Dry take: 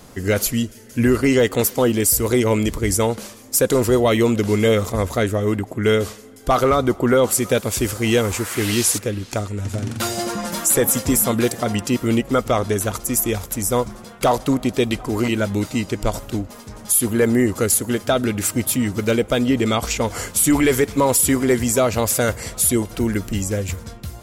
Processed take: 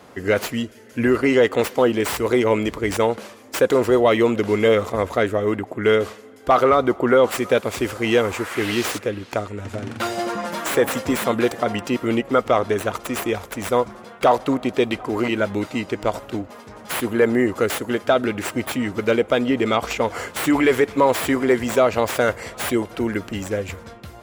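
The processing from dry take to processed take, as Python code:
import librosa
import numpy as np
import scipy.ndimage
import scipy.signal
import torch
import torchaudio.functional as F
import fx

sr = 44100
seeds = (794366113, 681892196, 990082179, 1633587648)

y = fx.tracing_dist(x, sr, depth_ms=0.054)
y = scipy.signal.sosfilt(scipy.signal.butter(2, 58.0, 'highpass', fs=sr, output='sos'), y)
y = fx.bass_treble(y, sr, bass_db=-10, treble_db=-13)
y = y * 10.0 ** (2.0 / 20.0)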